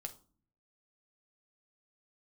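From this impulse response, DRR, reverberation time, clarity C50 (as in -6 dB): 4.5 dB, 0.40 s, 15.5 dB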